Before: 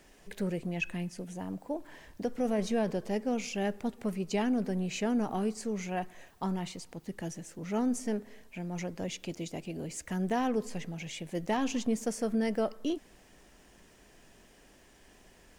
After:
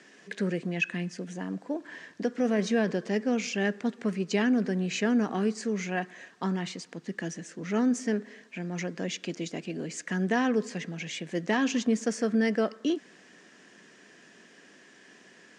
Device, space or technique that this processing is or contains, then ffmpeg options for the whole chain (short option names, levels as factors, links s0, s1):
television speaker: -af "highpass=f=170:w=0.5412,highpass=f=170:w=1.3066,equalizer=f=600:t=q:w=4:g=-4,equalizer=f=840:t=q:w=4:g=-7,equalizer=f=1700:t=q:w=4:g=7,lowpass=f=7300:w=0.5412,lowpass=f=7300:w=1.3066,volume=1.78"